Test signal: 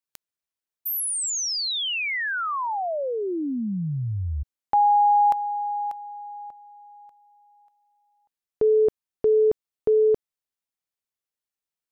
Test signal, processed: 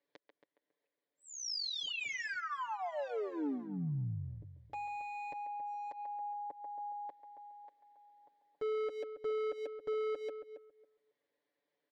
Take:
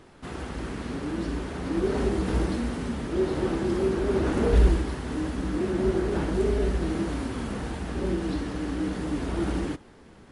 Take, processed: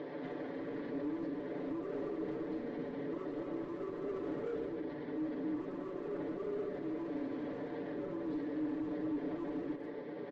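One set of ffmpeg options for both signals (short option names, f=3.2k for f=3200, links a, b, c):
-filter_complex "[0:a]acompressor=threshold=-34dB:ratio=2:attack=0.15:release=885:detection=rms,highpass=310,equalizer=f=320:t=q:w=4:g=4,equalizer=f=520:t=q:w=4:g=8,equalizer=f=790:t=q:w=4:g=-5,equalizer=f=1.3k:t=q:w=4:g=-10,equalizer=f=1.9k:t=q:w=4:g=5,equalizer=f=2.7k:t=q:w=4:g=-8,lowpass=f=3.8k:w=0.5412,lowpass=f=3.8k:w=1.3066,aresample=16000,asoftclip=type=hard:threshold=-36dB,aresample=44100,tiltshelf=f=1.1k:g=5.5,asplit=2[a][b];[b]adelay=140,highpass=300,lowpass=3.4k,asoftclip=type=hard:threshold=-34dB,volume=-12dB[c];[a][c]amix=inputs=2:normalize=0,alimiter=level_in=23dB:limit=-24dB:level=0:latency=1:release=172,volume=-23dB,aecho=1:1:6.9:0.78,asplit=2[d][e];[e]adelay=275,lowpass=f=1.6k:p=1,volume=-9.5dB,asplit=2[f][g];[g]adelay=275,lowpass=f=1.6k:p=1,volume=0.19,asplit=2[h][i];[i]adelay=275,lowpass=f=1.6k:p=1,volume=0.19[j];[f][h][j]amix=inputs=3:normalize=0[k];[d][k]amix=inputs=2:normalize=0,volume=10dB"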